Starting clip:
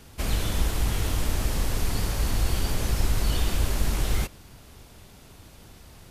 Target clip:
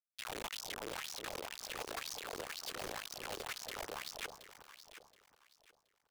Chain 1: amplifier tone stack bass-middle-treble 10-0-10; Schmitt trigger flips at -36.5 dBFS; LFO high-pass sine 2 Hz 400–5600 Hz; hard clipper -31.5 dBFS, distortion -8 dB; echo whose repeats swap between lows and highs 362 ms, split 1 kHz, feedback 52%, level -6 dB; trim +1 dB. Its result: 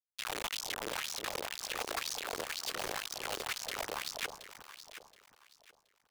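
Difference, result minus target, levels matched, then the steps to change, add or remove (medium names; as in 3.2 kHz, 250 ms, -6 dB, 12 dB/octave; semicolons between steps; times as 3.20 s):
hard clipper: distortion -5 dB
change: hard clipper -39 dBFS, distortion -4 dB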